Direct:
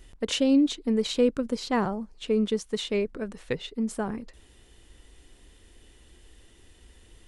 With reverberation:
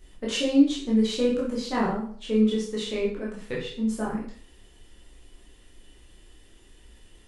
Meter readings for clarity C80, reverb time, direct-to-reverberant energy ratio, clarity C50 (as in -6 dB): 8.5 dB, 0.50 s, -5.5 dB, 4.5 dB